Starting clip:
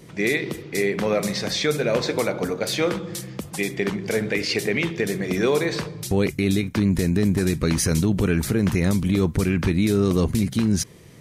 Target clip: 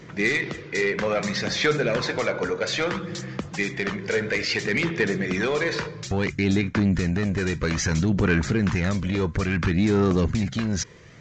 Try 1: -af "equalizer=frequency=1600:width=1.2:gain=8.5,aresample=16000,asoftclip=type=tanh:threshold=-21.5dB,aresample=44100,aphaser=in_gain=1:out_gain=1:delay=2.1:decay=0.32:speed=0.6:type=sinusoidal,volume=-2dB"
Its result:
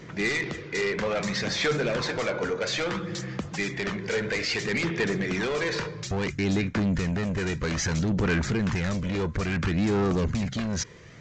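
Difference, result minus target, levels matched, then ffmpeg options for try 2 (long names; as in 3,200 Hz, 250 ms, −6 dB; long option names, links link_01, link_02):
soft clipping: distortion +8 dB
-af "equalizer=frequency=1600:width=1.2:gain=8.5,aresample=16000,asoftclip=type=tanh:threshold=-14dB,aresample=44100,aphaser=in_gain=1:out_gain=1:delay=2.1:decay=0.32:speed=0.6:type=sinusoidal,volume=-2dB"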